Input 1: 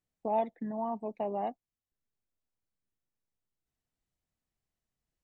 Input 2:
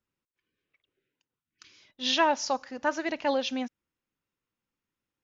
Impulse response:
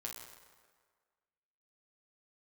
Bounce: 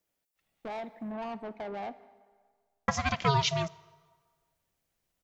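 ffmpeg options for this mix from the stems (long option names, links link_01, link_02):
-filter_complex "[0:a]acompressor=threshold=-30dB:ratio=6,asoftclip=type=tanh:threshold=-38dB,adelay=400,volume=1.5dB,asplit=2[link_01][link_02];[link_02]volume=-7dB[link_03];[1:a]highshelf=frequency=5600:gain=11.5,aeval=exprs='val(0)*sin(2*PI*410*n/s)':channel_layout=same,volume=3dB,asplit=3[link_04][link_05][link_06];[link_04]atrim=end=1.13,asetpts=PTS-STARTPTS,afade=type=out:start_time=1.126:duration=0.004:curve=hsin[link_07];[link_05]atrim=start=1.13:end=2.88,asetpts=PTS-STARTPTS,volume=0[link_08];[link_06]atrim=start=2.88,asetpts=PTS-STARTPTS,afade=type=in:duration=0.004:curve=hsin[link_09];[link_07][link_08][link_09]concat=n=3:v=0:a=1,asplit=2[link_10][link_11];[link_11]volume=-14.5dB[link_12];[2:a]atrim=start_sample=2205[link_13];[link_03][link_12]amix=inputs=2:normalize=0[link_14];[link_14][link_13]afir=irnorm=-1:irlink=0[link_15];[link_01][link_10][link_15]amix=inputs=3:normalize=0"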